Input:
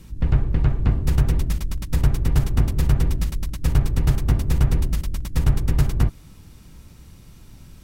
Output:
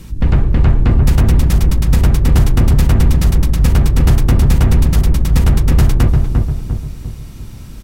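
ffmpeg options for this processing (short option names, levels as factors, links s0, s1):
-filter_complex "[0:a]asplit=2[s0][s1];[s1]adelay=348,lowpass=f=1100:p=1,volume=0.631,asplit=2[s2][s3];[s3]adelay=348,lowpass=f=1100:p=1,volume=0.47,asplit=2[s4][s5];[s5]adelay=348,lowpass=f=1100:p=1,volume=0.47,asplit=2[s6][s7];[s7]adelay=348,lowpass=f=1100:p=1,volume=0.47,asplit=2[s8][s9];[s9]adelay=348,lowpass=f=1100:p=1,volume=0.47,asplit=2[s10][s11];[s11]adelay=348,lowpass=f=1100:p=1,volume=0.47[s12];[s0][s2][s4][s6][s8][s10][s12]amix=inputs=7:normalize=0,apsyclip=5.31,volume=0.596"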